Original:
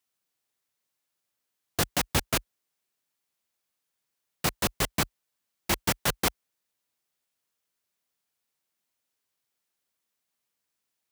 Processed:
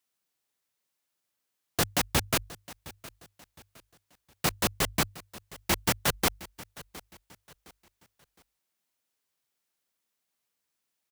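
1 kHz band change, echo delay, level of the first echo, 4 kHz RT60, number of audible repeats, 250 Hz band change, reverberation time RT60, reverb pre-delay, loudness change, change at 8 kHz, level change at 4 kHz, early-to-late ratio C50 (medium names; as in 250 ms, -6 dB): 0.0 dB, 713 ms, -19.0 dB, no reverb, 2, 0.0 dB, no reverb, no reverb, 0.0 dB, 0.0 dB, 0.0 dB, no reverb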